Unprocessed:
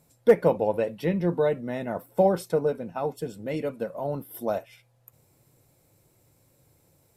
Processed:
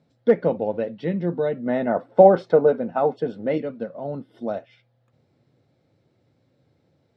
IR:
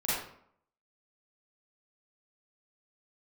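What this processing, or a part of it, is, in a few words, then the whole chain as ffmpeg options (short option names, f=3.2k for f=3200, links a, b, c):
guitar cabinet: -filter_complex "[0:a]asettb=1/sr,asplit=3[a][b][c];[a]atrim=end=1.664[d];[b]atrim=start=1.66:end=3.58,asetpts=PTS-STARTPTS,afade=t=in:d=0.004:c=qsin,afade=t=out:st=1.916:d=0.004:c=qsin,equalizer=f=860:t=o:w=2.9:g=11[e];[c]atrim=start=3.576[f];[d][e]acrossfade=d=0.004:c1=hsin:c2=qsin[g];[g][f]acrossfade=d=0.004:c1=qsin:c2=hsin,highpass=93,equalizer=f=240:t=q:w=4:g=6,equalizer=f=990:t=q:w=4:g=-7,equalizer=f=2.5k:t=q:w=4:g=-6,lowpass=f=4.2k:w=0.5412,lowpass=f=4.2k:w=1.3066"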